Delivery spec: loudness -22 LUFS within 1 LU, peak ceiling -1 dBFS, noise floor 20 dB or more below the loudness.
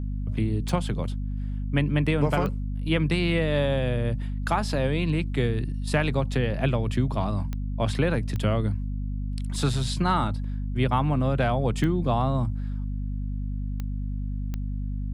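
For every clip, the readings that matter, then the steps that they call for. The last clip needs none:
clicks 7; hum 50 Hz; harmonics up to 250 Hz; hum level -27 dBFS; loudness -27.0 LUFS; peak -10.0 dBFS; loudness target -22.0 LUFS
-> de-click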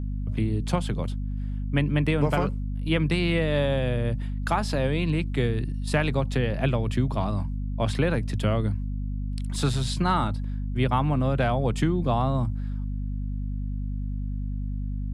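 clicks 0; hum 50 Hz; harmonics up to 250 Hz; hum level -27 dBFS
-> notches 50/100/150/200/250 Hz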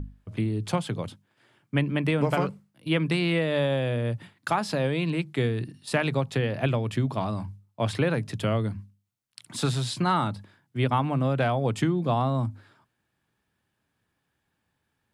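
hum none; loudness -27.0 LUFS; peak -11.5 dBFS; loudness target -22.0 LUFS
-> gain +5 dB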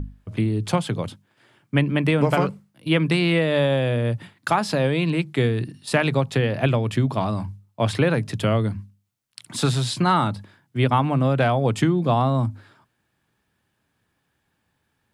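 loudness -22.0 LUFS; peak -6.5 dBFS; noise floor -73 dBFS

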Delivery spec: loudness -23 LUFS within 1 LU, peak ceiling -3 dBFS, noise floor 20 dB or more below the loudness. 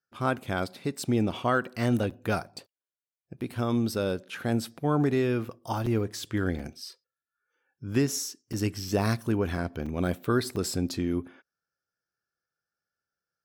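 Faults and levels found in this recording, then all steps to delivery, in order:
dropouts 7; longest dropout 5.1 ms; loudness -29.0 LUFS; peak -13.5 dBFS; loudness target -23.0 LUFS
-> interpolate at 2.1/3.41/5.86/6.59/8.53/9.86/10.56, 5.1 ms; gain +6 dB

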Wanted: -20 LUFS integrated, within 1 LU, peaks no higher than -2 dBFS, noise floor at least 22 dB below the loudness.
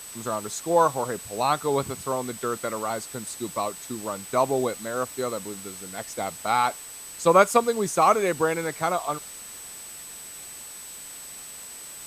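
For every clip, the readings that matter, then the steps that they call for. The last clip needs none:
steady tone 8000 Hz; tone level -40 dBFS; noise floor -41 dBFS; noise floor target -48 dBFS; loudness -25.5 LUFS; peak -4.5 dBFS; loudness target -20.0 LUFS
-> notch 8000 Hz, Q 30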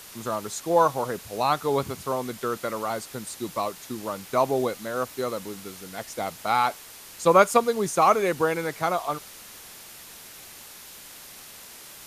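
steady tone none; noise floor -45 dBFS; noise floor target -48 dBFS
-> denoiser 6 dB, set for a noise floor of -45 dBFS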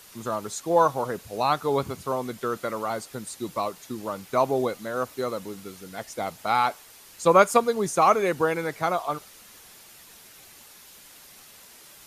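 noise floor -50 dBFS; loudness -25.5 LUFS; peak -5.0 dBFS; loudness target -20.0 LUFS
-> gain +5.5 dB; limiter -2 dBFS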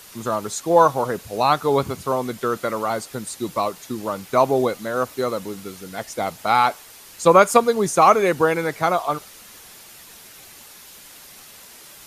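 loudness -20.5 LUFS; peak -2.0 dBFS; noise floor -44 dBFS

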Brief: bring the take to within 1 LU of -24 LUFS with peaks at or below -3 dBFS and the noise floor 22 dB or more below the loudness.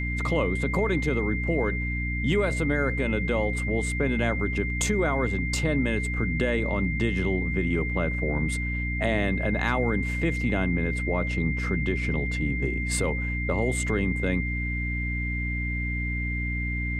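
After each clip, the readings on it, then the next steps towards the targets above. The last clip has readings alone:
hum 60 Hz; harmonics up to 300 Hz; hum level -27 dBFS; steady tone 2100 Hz; tone level -31 dBFS; loudness -26.5 LUFS; peak -11.0 dBFS; loudness target -24.0 LUFS
-> de-hum 60 Hz, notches 5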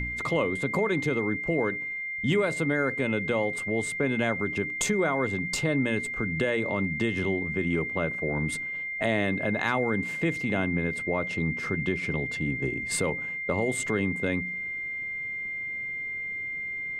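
hum none; steady tone 2100 Hz; tone level -31 dBFS
-> notch 2100 Hz, Q 30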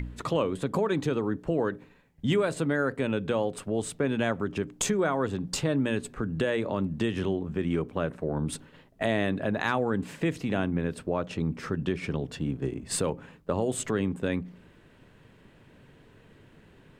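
steady tone none; loudness -29.5 LUFS; peak -12.5 dBFS; loudness target -24.0 LUFS
-> gain +5.5 dB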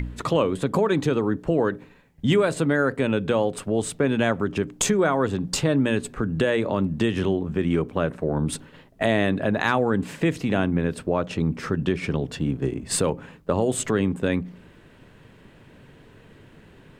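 loudness -24.0 LUFS; peak -7.0 dBFS; noise floor -51 dBFS

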